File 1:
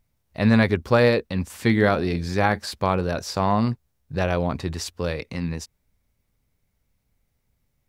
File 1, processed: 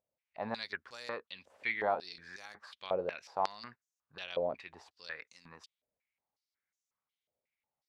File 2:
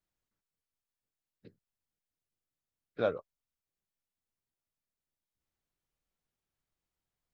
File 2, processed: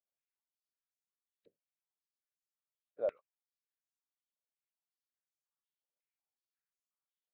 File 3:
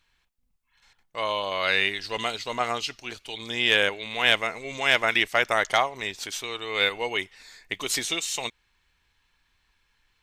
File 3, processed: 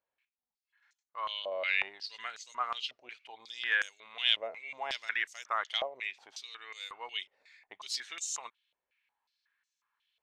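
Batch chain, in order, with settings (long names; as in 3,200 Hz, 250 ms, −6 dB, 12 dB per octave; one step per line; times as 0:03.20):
band-pass on a step sequencer 5.5 Hz 580–6,600 Hz
level −2 dB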